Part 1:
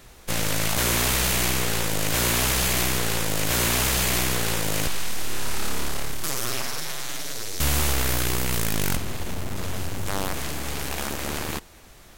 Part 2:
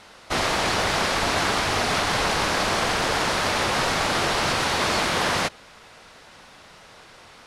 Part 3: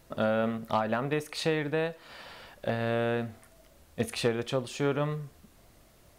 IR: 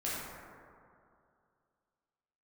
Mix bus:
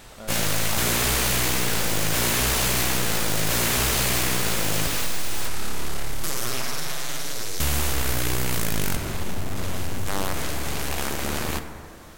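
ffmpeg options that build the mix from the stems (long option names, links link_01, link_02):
-filter_complex "[0:a]volume=-0.5dB,asplit=2[link_01][link_02];[link_02]volume=-10.5dB[link_03];[1:a]equalizer=frequency=8000:width_type=o:width=0.28:gain=12.5,aeval=exprs='(mod(10*val(0)+1,2)-1)/10':channel_layout=same,volume=-3.5dB[link_04];[2:a]volume=-13.5dB[link_05];[3:a]atrim=start_sample=2205[link_06];[link_03][link_06]afir=irnorm=-1:irlink=0[link_07];[link_01][link_04][link_05][link_07]amix=inputs=4:normalize=0,acompressor=threshold=-18dB:ratio=6"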